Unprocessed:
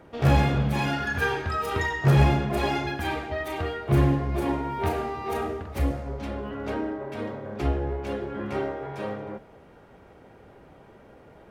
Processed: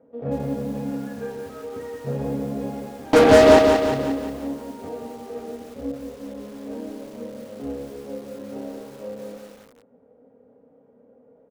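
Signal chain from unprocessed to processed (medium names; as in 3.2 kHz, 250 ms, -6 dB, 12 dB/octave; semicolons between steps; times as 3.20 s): two resonant band-passes 350 Hz, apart 0.89 oct; 3.13–3.59 s: fuzz box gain 47 dB, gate -54 dBFS; doubling 29 ms -8.5 dB; feedback delay 105 ms, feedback 50%, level -17 dB; bit-crushed delay 177 ms, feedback 55%, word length 8-bit, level -5 dB; trim +3 dB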